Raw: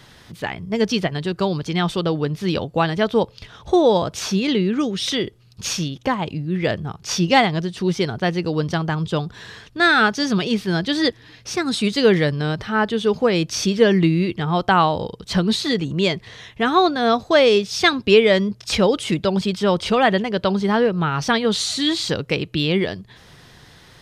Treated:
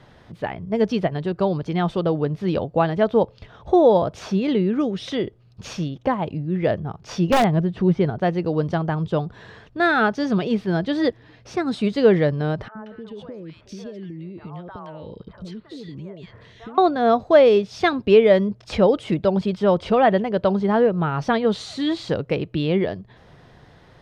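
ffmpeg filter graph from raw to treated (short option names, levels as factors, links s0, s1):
-filter_complex "[0:a]asettb=1/sr,asplit=3[s0][s1][s2];[s0]atrim=end=7.304[s3];[s1]atrim=start=7.3:end=8.1,asetpts=PTS-STARTPTS,afade=t=in:d=0.004:c=qsin,afade=t=out:st=0.796:d=0.004:c=qsin,bass=f=250:g=6,treble=f=4000:g=-12,acompressor=mode=upward:threshold=0.0631:ratio=2.5:attack=3.2:release=140:knee=2.83:detection=peak,aeval=exprs='(mod(2.11*val(0)+1,2)-1)/2.11':c=same[s4];[s2]atrim=start=8.096[s5];[s3][s4]acrossfade=d=0.004:c1=hsin:c2=qsin[s6];[s6][s5]acrossfade=d=0.004:c1=qsin:c2=hsin,asettb=1/sr,asplit=3[s7][s8][s9];[s7]atrim=end=12.684[s10];[s8]atrim=start=12.68:end=16.78,asetpts=PTS-STARTPTS,afade=t=in:d=0.004:c=qsin,afade=t=out:st=4.096:d=0.004:c=qsin,bandreject=f=760:w=5.7,acompressor=threshold=0.0316:ratio=12:attack=3.2:release=140:knee=1:detection=peak,acrossover=split=580|1800[s11][s12][s13];[s11]adelay=70[s14];[s13]adelay=180[s15];[s14][s12][s15]amix=inputs=3:normalize=0,atrim=end_sample=180810[s16];[s9]atrim=start=16.776[s17];[s10][s16]acrossfade=d=0.004:c1=hsin:c2=qsin[s18];[s18][s17]acrossfade=d=0.004:c1=qsin:c2=hsin,lowpass=f=1200:p=1,equalizer=f=630:t=o:w=0.76:g=5,volume=0.891"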